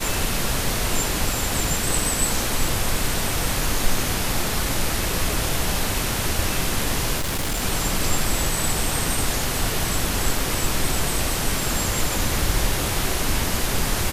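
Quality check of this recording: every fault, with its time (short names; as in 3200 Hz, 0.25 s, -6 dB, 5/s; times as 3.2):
7.17–7.63 clipped -20.5 dBFS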